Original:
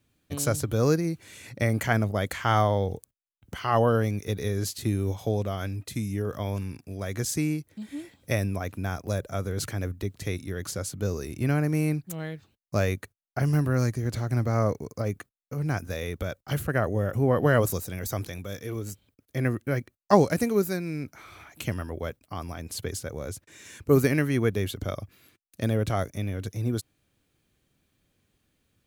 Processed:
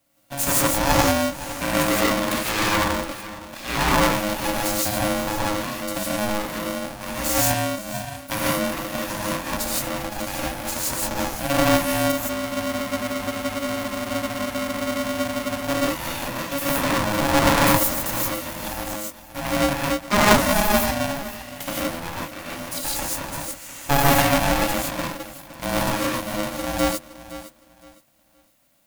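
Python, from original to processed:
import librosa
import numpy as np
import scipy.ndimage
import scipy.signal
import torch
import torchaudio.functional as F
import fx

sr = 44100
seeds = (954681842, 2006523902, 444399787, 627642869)

y = fx.lower_of_two(x, sr, delay_ms=0.44)
y = scipy.signal.sosfilt(scipy.signal.butter(4, 120.0, 'highpass', fs=sr, output='sos'), y)
y = fx.high_shelf(y, sr, hz=7800.0, db=11.5)
y = fx.echo_feedback(y, sr, ms=514, feedback_pct=25, wet_db=-15.0)
y = fx.rev_gated(y, sr, seeds[0], gate_ms=190, shape='rising', drr_db=-5.5)
y = fx.spec_freeze(y, sr, seeds[1], at_s=12.44, hold_s=3.21)
y = y * np.sign(np.sin(2.0 * np.pi * 420.0 * np.arange(len(y)) / sr))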